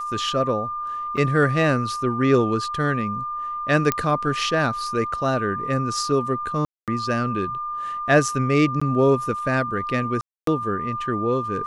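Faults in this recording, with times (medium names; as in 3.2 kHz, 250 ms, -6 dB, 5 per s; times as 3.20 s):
whine 1.2 kHz -26 dBFS
1.17 s: dropout 4.8 ms
3.92 s: pop -5 dBFS
6.65–6.88 s: dropout 227 ms
8.80–8.81 s: dropout 15 ms
10.21–10.47 s: dropout 263 ms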